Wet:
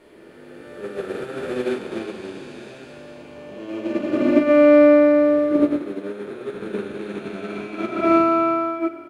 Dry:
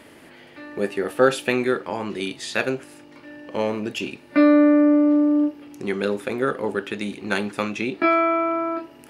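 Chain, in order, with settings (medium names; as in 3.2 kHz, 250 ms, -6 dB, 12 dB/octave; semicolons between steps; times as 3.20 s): spectral blur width 1060 ms; 5.76–6.54 s: bass shelf 260 Hz -6.5 dB; echo from a far wall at 20 m, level -11 dB; simulated room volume 47 m³, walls mixed, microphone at 1 m; upward expansion 2.5:1, over -23 dBFS; trim +3 dB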